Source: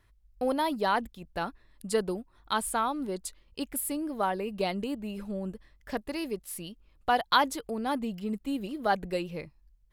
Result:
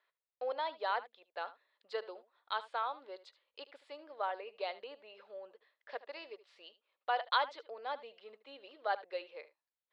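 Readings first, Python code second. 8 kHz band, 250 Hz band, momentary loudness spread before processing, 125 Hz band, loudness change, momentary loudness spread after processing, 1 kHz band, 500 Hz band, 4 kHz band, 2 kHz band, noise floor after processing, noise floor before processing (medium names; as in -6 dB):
under -35 dB, -29.0 dB, 12 LU, under -40 dB, -8.0 dB, 18 LU, -7.5 dB, -9.0 dB, -7.5 dB, -7.0 dB, under -85 dBFS, -65 dBFS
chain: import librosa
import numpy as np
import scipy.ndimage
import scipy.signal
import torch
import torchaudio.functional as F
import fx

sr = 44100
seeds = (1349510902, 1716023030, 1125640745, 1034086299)

y = scipy.signal.sosfilt(scipy.signal.ellip(3, 1.0, 50, [500.0, 4100.0], 'bandpass', fs=sr, output='sos'), x)
y = y + 10.0 ** (-16.5 / 20.0) * np.pad(y, (int(75 * sr / 1000.0), 0))[:len(y)]
y = y * 10.0 ** (-7.0 / 20.0)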